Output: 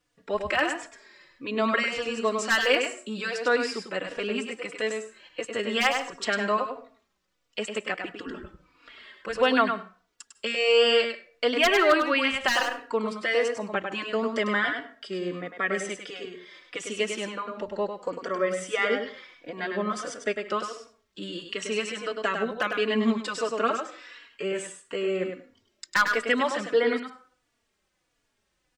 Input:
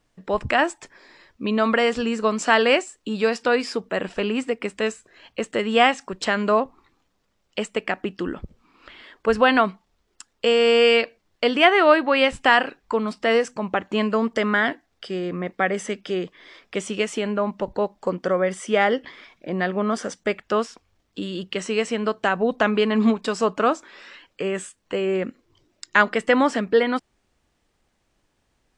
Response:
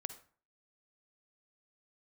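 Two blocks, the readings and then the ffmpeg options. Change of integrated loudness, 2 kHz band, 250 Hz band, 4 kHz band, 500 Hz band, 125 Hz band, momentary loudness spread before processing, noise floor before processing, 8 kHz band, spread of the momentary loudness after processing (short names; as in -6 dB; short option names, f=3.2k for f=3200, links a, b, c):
-5.0 dB, -3.5 dB, -7.5 dB, -2.5 dB, -5.5 dB, -9.0 dB, 14 LU, -70 dBFS, -1.0 dB, 16 LU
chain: -filter_complex "[0:a]lowshelf=f=290:g=-10,aeval=exprs='0.473*(abs(mod(val(0)/0.473+3,4)-2)-1)':c=same,equalizer=f=810:w=2.3:g=-5,asplit=2[a][b];[1:a]atrim=start_sample=2205,adelay=101[c];[b][c]afir=irnorm=-1:irlink=0,volume=-3.5dB[d];[a][d]amix=inputs=2:normalize=0,asplit=2[e][f];[f]adelay=3.5,afreqshift=-1.5[g];[e][g]amix=inputs=2:normalize=1"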